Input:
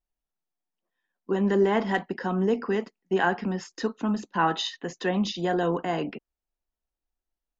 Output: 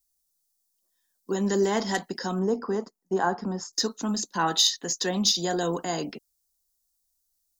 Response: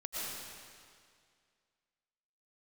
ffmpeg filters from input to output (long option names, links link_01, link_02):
-filter_complex "[0:a]asettb=1/sr,asplit=3[link_01][link_02][link_03];[link_01]atrim=end=2.394[link_04];[link_02]atrim=start=2.39:end=3.73,asetpts=PTS-STARTPTS,afade=type=in:duration=0.004:curve=qsin,afade=type=out:start_time=1.336:duration=0.004:curve=qsin,highshelf=frequency=1700:width_type=q:width=1.5:gain=-12[link_05];[link_03]atrim=start=3.726[link_06];[link_04][link_05]acrossfade=duration=0.004:curve1=hsin:curve2=qsin[link_07];[link_07][link_06]acrossfade=duration=0.004:curve1=qsin:curve2=hsin,aexciter=amount=4.5:drive=9.8:freq=4000,volume=-2dB"